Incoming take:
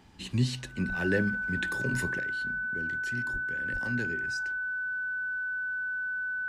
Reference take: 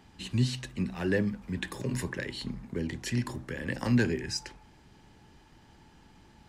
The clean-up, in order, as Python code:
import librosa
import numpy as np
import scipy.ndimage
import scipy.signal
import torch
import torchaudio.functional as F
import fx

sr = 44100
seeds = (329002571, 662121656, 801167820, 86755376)

y = fx.notch(x, sr, hz=1500.0, q=30.0)
y = fx.highpass(y, sr, hz=140.0, slope=24, at=(0.88, 1.0), fade=0.02)
y = fx.highpass(y, sr, hz=140.0, slope=24, at=(3.32, 3.44), fade=0.02)
y = fx.highpass(y, sr, hz=140.0, slope=24, at=(3.72, 3.84), fade=0.02)
y = fx.gain(y, sr, db=fx.steps((0.0, 0.0), (2.19, 9.0)))